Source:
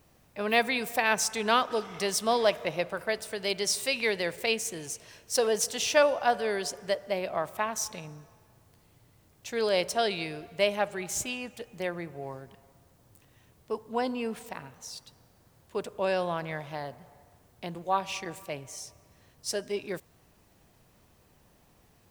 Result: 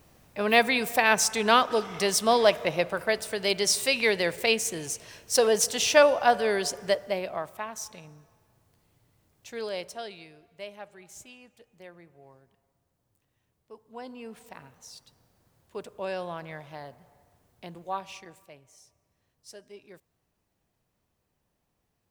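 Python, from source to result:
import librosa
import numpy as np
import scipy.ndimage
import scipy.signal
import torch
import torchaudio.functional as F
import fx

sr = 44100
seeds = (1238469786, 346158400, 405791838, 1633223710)

y = fx.gain(x, sr, db=fx.line((6.93, 4.0), (7.6, -5.5), (9.56, -5.5), (10.33, -15.0), (13.72, -15.0), (14.62, -5.0), (17.91, -5.0), (18.6, -15.0)))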